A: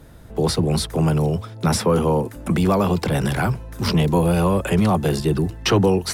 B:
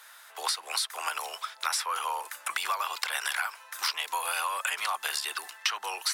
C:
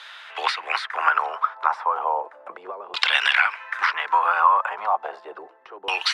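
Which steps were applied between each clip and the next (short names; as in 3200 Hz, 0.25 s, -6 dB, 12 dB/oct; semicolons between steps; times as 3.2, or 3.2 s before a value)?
HPF 1100 Hz 24 dB/oct; compressor 6:1, threshold -33 dBFS, peak gain reduction 14 dB; gain +6 dB
LFO low-pass saw down 0.34 Hz 360–3600 Hz; short-mantissa float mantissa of 8-bit; gain +8.5 dB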